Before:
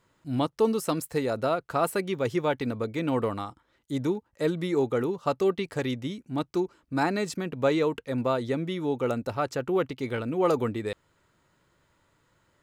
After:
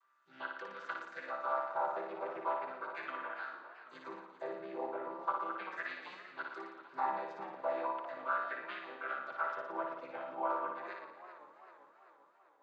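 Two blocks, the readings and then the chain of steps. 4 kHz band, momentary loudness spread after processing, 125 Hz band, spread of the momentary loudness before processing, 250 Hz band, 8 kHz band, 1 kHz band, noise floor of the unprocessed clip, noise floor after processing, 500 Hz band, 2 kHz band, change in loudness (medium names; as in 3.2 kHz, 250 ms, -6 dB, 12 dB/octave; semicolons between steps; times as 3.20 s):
-17.0 dB, 13 LU, under -35 dB, 6 LU, -23.5 dB, under -30 dB, -4.5 dB, -70 dBFS, -66 dBFS, -15.0 dB, -4.5 dB, -11.5 dB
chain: vocoder on a held chord major triad, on C3; differentiator; low-pass that closes with the level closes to 2.8 kHz, closed at -49.5 dBFS; in parallel at +2 dB: peak limiter -42.5 dBFS, peak gain reduction 7 dB; on the sum: wah-wah 0.37 Hz 800–1700 Hz, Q 4; on a send: flutter echo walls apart 9.9 m, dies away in 0.85 s; on the sum: modulated delay 393 ms, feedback 57%, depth 96 cents, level -14 dB; trim +16 dB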